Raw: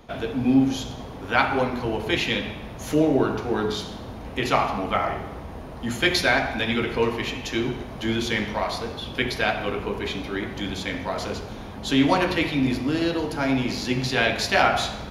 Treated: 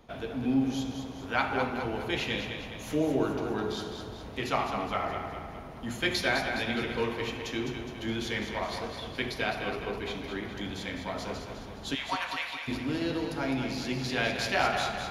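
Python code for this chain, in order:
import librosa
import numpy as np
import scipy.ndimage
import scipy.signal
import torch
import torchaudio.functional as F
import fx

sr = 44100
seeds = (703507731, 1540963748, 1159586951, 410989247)

y = fx.highpass(x, sr, hz=800.0, slope=24, at=(11.94, 12.67), fade=0.02)
y = fx.echo_feedback(y, sr, ms=207, feedback_pct=52, wet_db=-7.0)
y = y * 10.0 ** (-8.0 / 20.0)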